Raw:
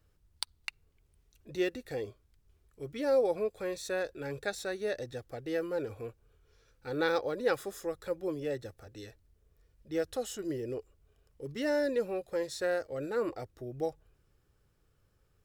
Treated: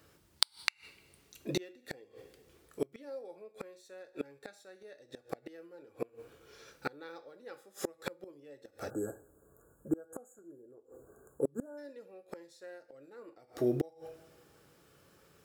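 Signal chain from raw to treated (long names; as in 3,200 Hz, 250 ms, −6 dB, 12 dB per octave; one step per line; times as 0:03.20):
high-pass filter 180 Hz 12 dB per octave
coupled-rooms reverb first 0.44 s, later 1.7 s, from −26 dB, DRR 7.5 dB
time-frequency box erased 0:08.90–0:11.78, 1,700–6,600 Hz
gate with flip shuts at −32 dBFS, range −32 dB
level +13 dB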